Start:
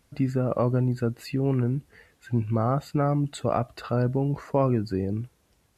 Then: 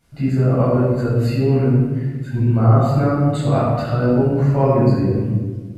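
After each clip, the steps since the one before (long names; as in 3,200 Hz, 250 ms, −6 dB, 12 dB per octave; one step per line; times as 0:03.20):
convolution reverb RT60 1.4 s, pre-delay 9 ms, DRR −10 dB
level −5.5 dB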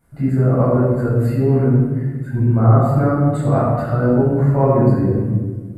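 flat-topped bell 4,000 Hz −13 dB
level +1 dB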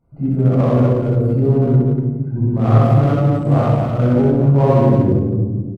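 adaptive Wiener filter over 25 samples
on a send: loudspeakers that aren't time-aligned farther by 22 metres −1 dB, 82 metres −5 dB
on the sum: level −1.5 dB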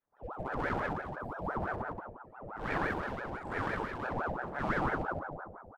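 Bessel high-pass filter 540 Hz, order 2
rotating-speaker cabinet horn 1 Hz
ring modulator whose carrier an LFO sweeps 680 Hz, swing 70%, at 5.9 Hz
level −8 dB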